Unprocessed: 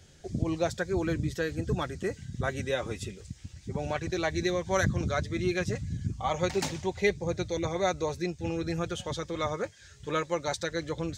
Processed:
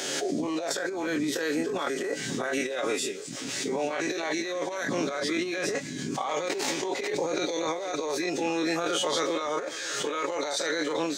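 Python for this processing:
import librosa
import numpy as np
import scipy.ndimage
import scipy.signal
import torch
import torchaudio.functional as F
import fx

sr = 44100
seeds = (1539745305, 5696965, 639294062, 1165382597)

y = fx.spec_dilate(x, sr, span_ms=60)
y = scipy.signal.sosfilt(scipy.signal.butter(4, 280.0, 'highpass', fs=sr, output='sos'), y)
y = y + 0.38 * np.pad(y, (int(7.2 * sr / 1000.0), 0))[:len(y)]
y = fx.over_compress(y, sr, threshold_db=-32.0, ratio=-0.5)
y = fx.echo_thinned(y, sr, ms=539, feedback_pct=54, hz=420.0, wet_db=-24)
y = fx.pre_swell(y, sr, db_per_s=24.0)
y = y * 10.0 ** (1.5 / 20.0)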